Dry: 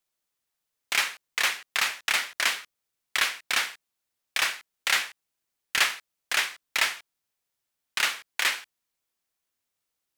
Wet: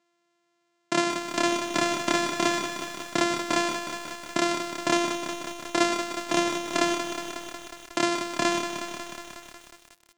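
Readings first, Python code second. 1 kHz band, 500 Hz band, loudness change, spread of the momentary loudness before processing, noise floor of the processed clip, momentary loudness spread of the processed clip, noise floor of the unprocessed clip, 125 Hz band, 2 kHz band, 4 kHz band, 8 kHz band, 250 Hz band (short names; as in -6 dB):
+7.5 dB, +18.0 dB, -0.5 dB, 8 LU, -73 dBFS, 11 LU, -83 dBFS, n/a, -4.0 dB, -3.0 dB, -0.5 dB, +27.5 dB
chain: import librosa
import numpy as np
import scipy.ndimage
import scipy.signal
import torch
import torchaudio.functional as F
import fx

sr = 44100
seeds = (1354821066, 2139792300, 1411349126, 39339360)

p1 = np.r_[np.sort(x[:len(x) // 128 * 128].reshape(-1, 128), axis=1).ravel(), x[len(x) // 128 * 128:]]
p2 = fx.over_compress(p1, sr, threshold_db=-35.0, ratio=-1.0)
p3 = p1 + F.gain(torch.from_numpy(p2), 0.5).numpy()
p4 = scipy.signal.sosfilt(scipy.signal.cheby1(3, 1.0, [150.0, 7400.0], 'bandpass', fs=sr, output='sos'), p3)
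y = fx.echo_crushed(p4, sr, ms=182, feedback_pct=80, bits=7, wet_db=-7.5)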